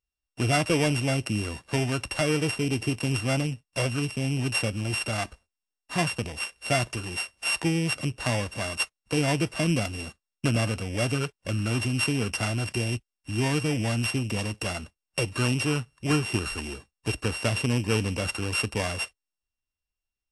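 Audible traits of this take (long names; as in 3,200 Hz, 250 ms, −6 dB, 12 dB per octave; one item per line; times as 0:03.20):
a buzz of ramps at a fixed pitch in blocks of 16 samples
AAC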